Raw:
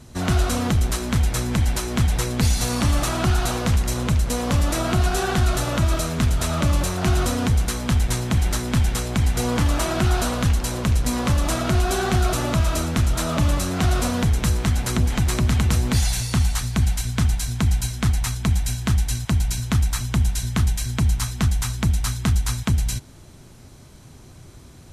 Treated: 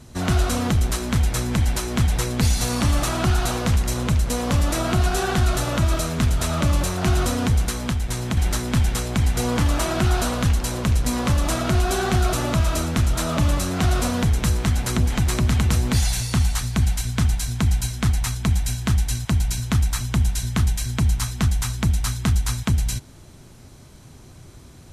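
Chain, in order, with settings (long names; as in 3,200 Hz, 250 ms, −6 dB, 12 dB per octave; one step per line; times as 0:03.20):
0:07.69–0:08.37: downward compressor 2.5 to 1, threshold −22 dBFS, peak gain reduction 5.5 dB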